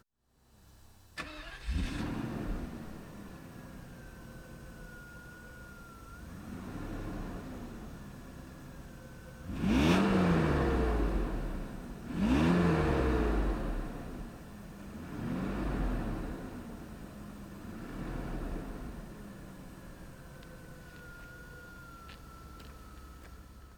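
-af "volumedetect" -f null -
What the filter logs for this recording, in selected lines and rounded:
mean_volume: -35.6 dB
max_volume: -13.3 dB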